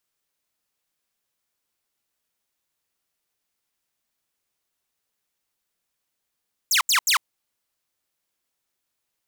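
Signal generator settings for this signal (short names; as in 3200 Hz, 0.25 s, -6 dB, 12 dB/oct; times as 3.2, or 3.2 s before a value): burst of laser zaps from 8000 Hz, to 920 Hz, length 0.10 s saw, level -13.5 dB, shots 3, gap 0.08 s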